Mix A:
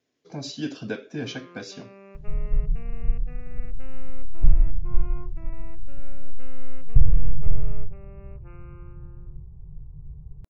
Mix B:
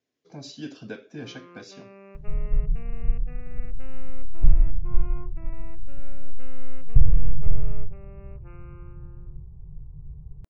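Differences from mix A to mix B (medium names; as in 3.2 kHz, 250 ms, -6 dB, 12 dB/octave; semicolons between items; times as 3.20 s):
speech -7.5 dB; reverb: on, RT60 0.35 s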